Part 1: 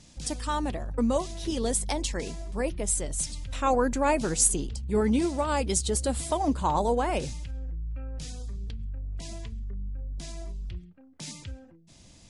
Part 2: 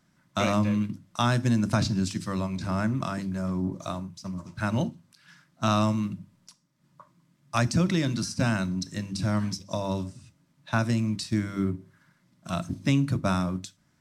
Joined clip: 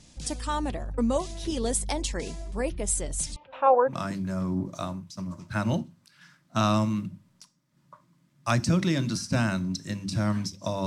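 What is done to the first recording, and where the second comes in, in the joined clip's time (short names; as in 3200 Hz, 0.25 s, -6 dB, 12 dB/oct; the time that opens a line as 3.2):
part 1
3.36–4 speaker cabinet 480–2500 Hz, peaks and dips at 540 Hz +9 dB, 890 Hz +10 dB, 2000 Hz -9 dB
3.93 switch to part 2 from 3 s, crossfade 0.14 s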